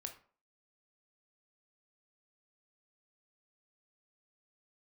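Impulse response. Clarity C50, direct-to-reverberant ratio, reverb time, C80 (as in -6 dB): 11.0 dB, 5.0 dB, 0.45 s, 16.0 dB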